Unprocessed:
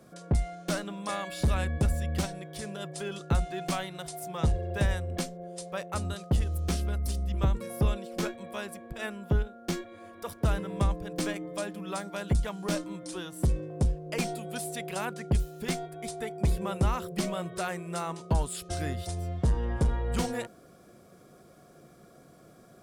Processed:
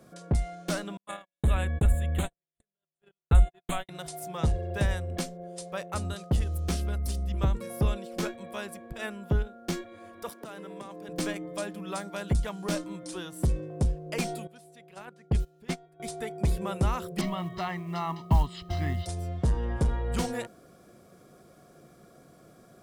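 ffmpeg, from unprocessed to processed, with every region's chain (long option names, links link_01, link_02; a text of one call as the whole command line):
ffmpeg -i in.wav -filter_complex "[0:a]asettb=1/sr,asplit=3[link_01][link_02][link_03];[link_01]atrim=end=0.974[link_04];[link_02]atrim=start=0.97:end=3.89,asetpts=PTS-STARTPTS,afade=type=in:duration=0.004:curve=qsin,afade=type=out:start_time=2.916:duration=0.004:curve=qsin,asubboost=boost=6.5:cutoff=74,asuperstop=centerf=5200:order=8:qfactor=1.8,agate=range=-57dB:threshold=-32dB:ratio=16:release=100:detection=peak[link_05];[link_03]atrim=start=3.886[link_06];[link_04][link_05]acrossfade=duration=0.004:curve1=hsin:curve2=qsin[link_07];[link_07][link_06]acrossfade=duration=0.004:curve1=qsin:curve2=hsin,asettb=1/sr,asplit=3[link_08][link_09][link_10];[link_08]atrim=end=10.294[link_11];[link_09]atrim=start=10.29:end=11.09,asetpts=PTS-STARTPTS,afade=type=in:duration=0.004:curve=qsin,afade=type=out:start_time=0.796:duration=0.004:curve=qsin,highpass=frequency=210:width=0.5412,highpass=frequency=210:width=1.3066,acompressor=threshold=-38dB:ratio=5:attack=3.2:release=140:knee=1:detection=peak[link_12];[link_10]atrim=start=11.086[link_13];[link_11][link_12]acrossfade=duration=0.004:curve1=hsin:curve2=qsin[link_14];[link_14][link_13]acrossfade=duration=0.004:curve1=qsin:curve2=hsin,asettb=1/sr,asplit=3[link_15][link_16][link_17];[link_15]atrim=end=14.474[link_18];[link_16]atrim=start=14.47:end=16,asetpts=PTS-STARTPTS,afade=type=in:duration=0.004:curve=qsin,afade=type=out:start_time=1.526:duration=0.004:curve=qsin,agate=range=-16dB:threshold=-31dB:ratio=16:release=100:detection=peak,highshelf=frequency=6500:gain=-9[link_19];[link_17]atrim=start=15.996[link_20];[link_18][link_19]acrossfade=duration=0.004:curve1=hsin:curve2=qsin[link_21];[link_21][link_20]acrossfade=duration=0.004:curve1=qsin:curve2=hsin,asettb=1/sr,asplit=3[link_22][link_23][link_24];[link_22]atrim=end=17.214[link_25];[link_23]atrim=start=17.21:end=19.06,asetpts=PTS-STARTPTS,afade=type=in:duration=0.004:curve=qsin,afade=type=out:start_time=1.846:duration=0.004:curve=qsin,lowpass=frequency=4400:width=0.5412,lowpass=frequency=4400:width=1.3066,aecho=1:1:1:0.76,atrim=end_sample=81585,acrusher=bits=8:mode=log:mix=0:aa=0.000001[link_26];[link_24]atrim=start=19.056[link_27];[link_25][link_26]acrossfade=duration=0.004:curve1=hsin:curve2=qsin[link_28];[link_28][link_27]acrossfade=duration=0.004:curve1=qsin:curve2=hsin" out.wav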